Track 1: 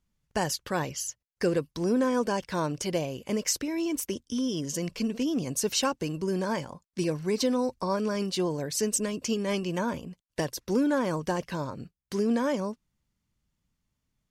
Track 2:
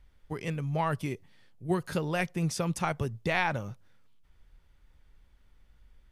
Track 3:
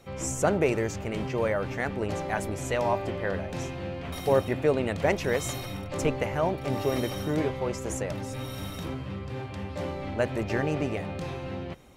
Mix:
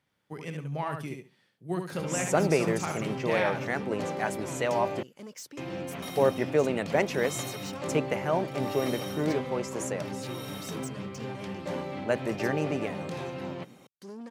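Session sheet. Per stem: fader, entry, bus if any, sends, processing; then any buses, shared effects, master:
−11.5 dB, 1.90 s, no send, no echo send, soft clipping −27 dBFS, distortion −11 dB
−4.0 dB, 0.00 s, no send, echo send −5 dB, no processing
−0.5 dB, 1.90 s, muted 0:05.03–0:05.57, no send, no echo send, upward compression, threshold −42 dBFS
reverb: not used
echo: repeating echo 71 ms, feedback 17%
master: high-pass filter 130 Hz 24 dB per octave

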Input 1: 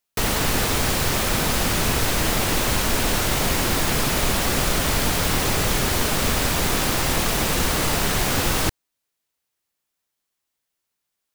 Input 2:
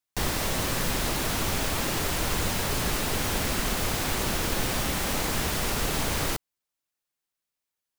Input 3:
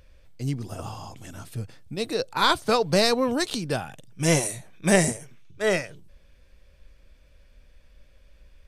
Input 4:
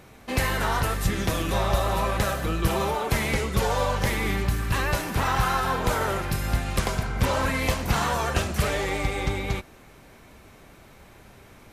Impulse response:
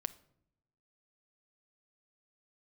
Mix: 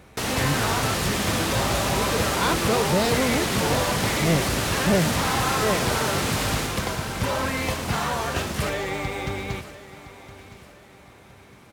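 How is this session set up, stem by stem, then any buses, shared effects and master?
0:06.53 −3.5 dB → 0:06.84 −11.5 dB, 0.00 s, no send, echo send −14 dB, no processing
−4.0 dB, 0.30 s, no send, no echo send, no processing
−2.5 dB, 0.00 s, no send, no echo send, spectral tilt −2 dB per octave
−0.5 dB, 0.00 s, no send, echo send −16.5 dB, no processing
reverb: not used
echo: repeating echo 1,014 ms, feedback 36%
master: high-pass filter 81 Hz 12 dB per octave; soft clipping −12 dBFS, distortion −20 dB; linearly interpolated sample-rate reduction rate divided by 2×

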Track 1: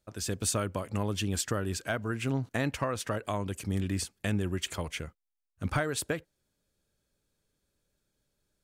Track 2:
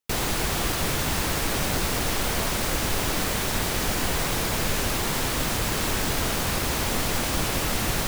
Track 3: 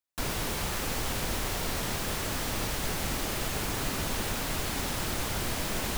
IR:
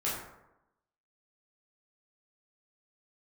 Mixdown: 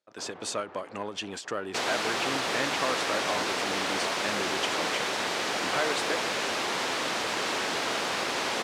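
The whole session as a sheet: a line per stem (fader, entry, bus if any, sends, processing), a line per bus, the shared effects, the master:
−0.5 dB, 0.00 s, no send, leveller curve on the samples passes 1
0.0 dB, 1.65 s, no send, no processing
−3.5 dB, 0.00 s, no send, low-pass filter 1,200 Hz 12 dB per octave; automatic ducking −9 dB, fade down 1.25 s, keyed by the first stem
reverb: not used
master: band-pass filter 380–5,300 Hz; every ending faded ahead of time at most 190 dB per second

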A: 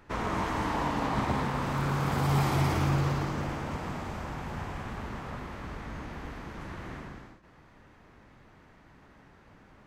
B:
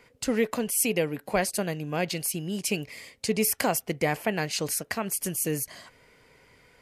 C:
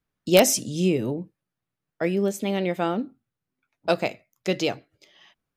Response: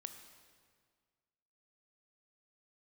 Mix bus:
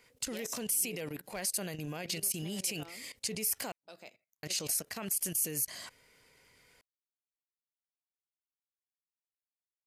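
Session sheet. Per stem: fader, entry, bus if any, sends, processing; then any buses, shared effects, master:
muted
+1.0 dB, 0.00 s, muted 0:03.72–0:04.43, bus A, no send, hard clipping −15 dBFS, distortion −30 dB
−16.5 dB, 0.00 s, bus A, no send, low-shelf EQ 160 Hz −10.5 dB
bus A: 0.0 dB, output level in coarse steps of 17 dB; brickwall limiter −32 dBFS, peak gain reduction 12 dB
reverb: not used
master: high-shelf EQ 3,000 Hz +11.5 dB

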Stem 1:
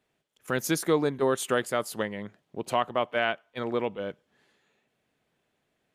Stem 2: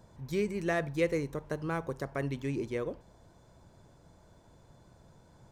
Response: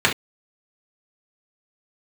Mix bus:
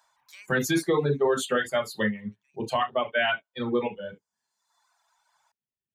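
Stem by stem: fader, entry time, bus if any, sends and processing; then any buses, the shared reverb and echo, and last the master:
−2.5 dB, 0.00 s, send −8.5 dB, spectral dynamics exaggerated over time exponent 1.5
+2.0 dB, 0.00 s, no send, inverse Chebyshev high-pass filter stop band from 430 Hz, stop band 40 dB; automatic ducking −19 dB, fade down 1.35 s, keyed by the first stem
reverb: on, pre-delay 3 ms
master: reverb reduction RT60 1.3 s; brickwall limiter −15 dBFS, peak gain reduction 9 dB

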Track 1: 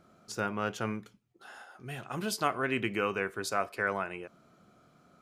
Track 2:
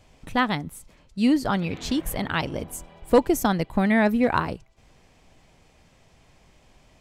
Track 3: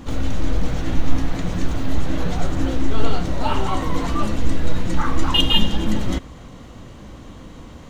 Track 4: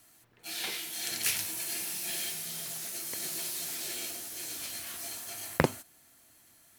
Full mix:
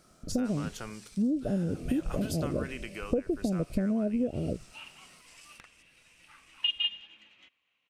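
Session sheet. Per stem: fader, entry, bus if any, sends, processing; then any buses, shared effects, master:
−2.0 dB, 0.00 s, no send, high-shelf EQ 3,500 Hz +9.5 dB; downward compressor, threshold −35 dBFS, peak gain reduction 12.5 dB
+1.5 dB, 0.00 s, no send, noise gate −51 dBFS, range −16 dB; elliptic low-pass filter 620 Hz
+1.5 dB, 1.30 s, no send, resonant band-pass 2,600 Hz, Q 7.1; expander for the loud parts 1.5 to 1, over −53 dBFS
−6.5 dB, 0.00 s, no send, downward compressor 6 to 1, threshold −39 dBFS, peak gain reduction 19 dB; low-pass with resonance 7,000 Hz, resonance Q 4.1; ring modulator whose carrier an LFO sweeps 1,600 Hz, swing 20%, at 2.7 Hz; automatic ducking −11 dB, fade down 1.60 s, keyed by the first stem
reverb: not used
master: downward compressor 12 to 1, threshold −25 dBFS, peak gain reduction 14.5 dB

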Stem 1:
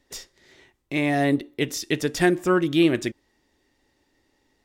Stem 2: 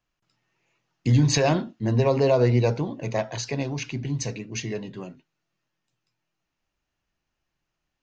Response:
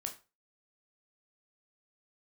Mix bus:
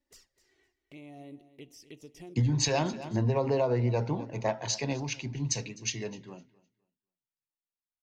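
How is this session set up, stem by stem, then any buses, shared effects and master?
−14.5 dB, 0.00 s, no send, echo send −15 dB, notch filter 3,600 Hz, Q 10; downward compressor 2.5 to 1, threshold −34 dBFS, peak gain reduction 13.5 dB; flanger swept by the level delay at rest 3.6 ms, full sweep at −31.5 dBFS
0.0 dB, 1.30 s, no send, echo send −22.5 dB, parametric band 880 Hz +6.5 dB 0.25 octaves; multiband upward and downward expander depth 70%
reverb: not used
echo: repeating echo 255 ms, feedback 21%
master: downward compressor 12 to 1, threshold −23 dBFS, peak gain reduction 12 dB

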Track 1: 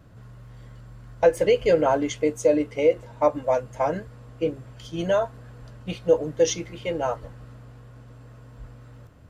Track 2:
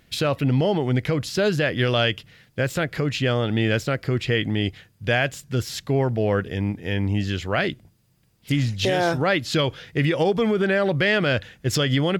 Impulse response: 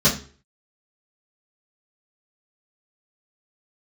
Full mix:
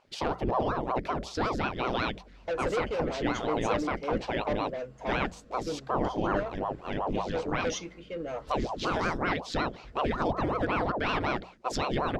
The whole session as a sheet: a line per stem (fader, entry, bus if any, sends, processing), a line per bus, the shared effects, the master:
−4.0 dB, 1.25 s, no send, noise gate with hold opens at −37 dBFS; soft clipping −22 dBFS, distortion −7 dB; rotating-speaker cabinet horn 1.2 Hz
−4.5 dB, 0.00 s, no send, parametric band 2,700 Hz −8 dB 0.64 octaves; mains-hum notches 60/120/180/240/300/360/420/480 Hz; ring modulator whose carrier an LFO sweeps 490 Hz, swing 85%, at 5.4 Hz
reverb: not used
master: low-pass filter 5,900 Hz 12 dB per octave; mains-hum notches 60/120/180 Hz

